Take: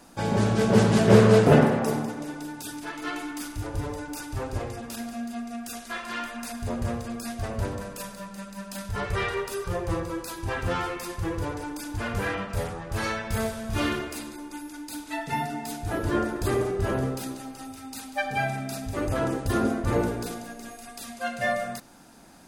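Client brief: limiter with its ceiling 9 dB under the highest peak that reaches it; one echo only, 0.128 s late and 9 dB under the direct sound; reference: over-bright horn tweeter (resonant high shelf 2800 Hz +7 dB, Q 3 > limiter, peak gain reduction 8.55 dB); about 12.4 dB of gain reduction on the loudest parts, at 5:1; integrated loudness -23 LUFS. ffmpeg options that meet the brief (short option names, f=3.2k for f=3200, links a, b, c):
-af "acompressor=threshold=-25dB:ratio=5,alimiter=limit=-24dB:level=0:latency=1,highshelf=f=2.8k:t=q:w=3:g=7,aecho=1:1:128:0.355,volume=11dB,alimiter=limit=-13.5dB:level=0:latency=1"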